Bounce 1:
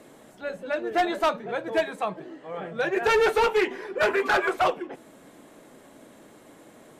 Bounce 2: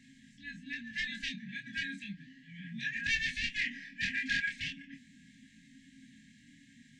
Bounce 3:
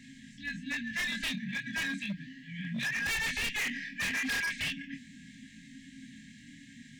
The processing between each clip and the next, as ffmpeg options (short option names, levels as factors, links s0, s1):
-af "afftfilt=real='re*(1-between(b*sr/4096,290,1600))':imag='im*(1-between(b*sr/4096,290,1600))':win_size=4096:overlap=0.75,flanger=delay=22.5:depth=4.4:speed=0.34,lowpass=f=6900:w=0.5412,lowpass=f=6900:w=1.3066"
-af "asoftclip=type=hard:threshold=0.0133,volume=2.37"